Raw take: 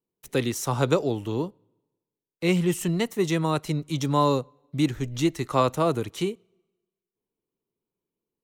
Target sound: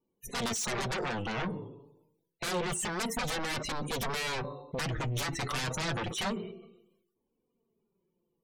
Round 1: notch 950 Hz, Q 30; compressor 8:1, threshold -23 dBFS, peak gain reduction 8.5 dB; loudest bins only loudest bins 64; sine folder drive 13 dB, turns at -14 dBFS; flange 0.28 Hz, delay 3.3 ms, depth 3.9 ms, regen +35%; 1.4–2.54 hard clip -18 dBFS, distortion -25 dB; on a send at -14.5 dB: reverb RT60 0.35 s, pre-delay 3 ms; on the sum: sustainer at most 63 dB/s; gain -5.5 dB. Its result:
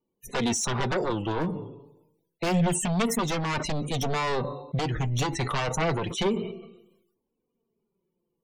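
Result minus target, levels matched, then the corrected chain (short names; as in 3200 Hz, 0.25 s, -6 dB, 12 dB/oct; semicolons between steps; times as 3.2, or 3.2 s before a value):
sine folder: distortion -15 dB
notch 950 Hz, Q 30; compressor 8:1, threshold -23 dBFS, peak gain reduction 8.5 dB; loudest bins only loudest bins 64; sine folder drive 13 dB, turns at -21 dBFS; flange 0.28 Hz, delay 3.3 ms, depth 3.9 ms, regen +35%; 1.4–2.54 hard clip -18 dBFS, distortion -73 dB; on a send at -14.5 dB: reverb RT60 0.35 s, pre-delay 3 ms; on the sum: sustainer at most 63 dB/s; gain -5.5 dB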